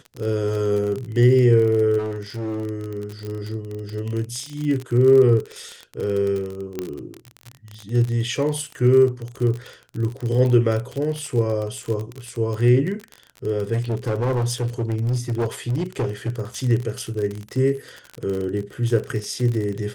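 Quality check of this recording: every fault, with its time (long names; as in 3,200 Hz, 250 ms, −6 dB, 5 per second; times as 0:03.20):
surface crackle 35 per second −25 dBFS
0:01.98–0:02.65: clipping −23.5 dBFS
0:03.25: click −21 dBFS
0:06.79: click −13 dBFS
0:13.73–0:16.41: clipping −18.5 dBFS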